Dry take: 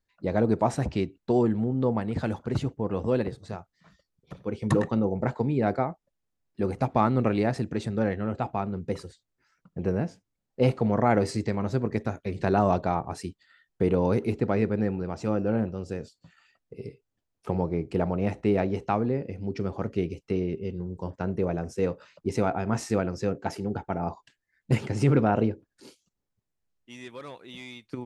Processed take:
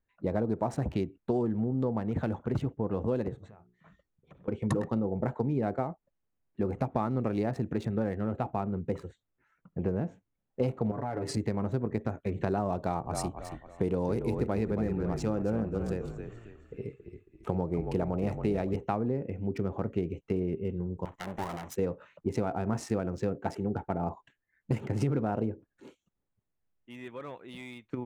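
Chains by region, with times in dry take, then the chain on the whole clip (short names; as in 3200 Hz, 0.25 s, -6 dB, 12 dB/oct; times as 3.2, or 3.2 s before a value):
3.47–4.48 notches 60/120/180/240/300/360/420 Hz + compressor 5:1, threshold -50 dBFS
10.91–11.37 comb 7 ms, depth 89% + compressor 8:1, threshold -28 dBFS
12.78–18.76 high shelf 4500 Hz +11.5 dB + frequency-shifting echo 0.274 s, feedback 37%, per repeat -37 Hz, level -8.5 dB
21.05–21.76 minimum comb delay 1 ms + tilt +3 dB/oct
whole clip: Wiener smoothing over 9 samples; dynamic EQ 2500 Hz, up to -5 dB, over -43 dBFS, Q 0.71; compressor, threshold -25 dBFS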